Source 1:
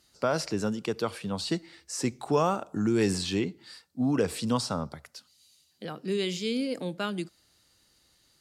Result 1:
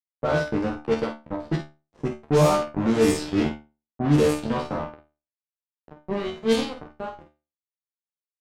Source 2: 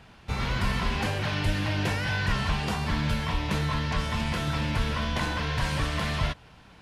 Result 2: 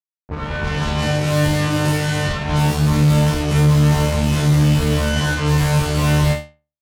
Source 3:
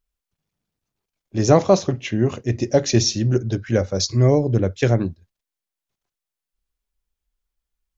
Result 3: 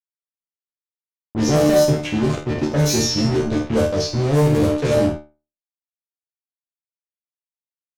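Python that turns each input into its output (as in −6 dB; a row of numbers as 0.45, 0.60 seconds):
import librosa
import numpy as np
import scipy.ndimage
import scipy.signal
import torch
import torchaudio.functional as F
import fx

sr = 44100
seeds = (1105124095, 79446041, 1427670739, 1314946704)

p1 = fx.hum_notches(x, sr, base_hz=60, count=7)
p2 = fx.comb_fb(p1, sr, f0_hz=150.0, decay_s=0.32, harmonics='all', damping=0.0, mix_pct=80)
p3 = fx.fuzz(p2, sr, gain_db=44.0, gate_db=-38.0)
p4 = fx.tilt_shelf(p3, sr, db=5.5, hz=800.0)
p5 = fx.comb_fb(p4, sr, f0_hz=75.0, decay_s=0.31, harmonics='all', damping=0.0, mix_pct=90)
p6 = fx.env_lowpass(p5, sr, base_hz=770.0, full_db=-14.0)
p7 = fx.high_shelf(p6, sr, hz=4400.0, db=9.5)
p8 = p7 + fx.room_early_taps(p7, sr, ms=(50, 62), db=(-8.0, -17.0), dry=0)
y = F.gain(torch.from_numpy(p8), 1.5).numpy()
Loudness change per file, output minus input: +5.5, +11.0, +1.0 LU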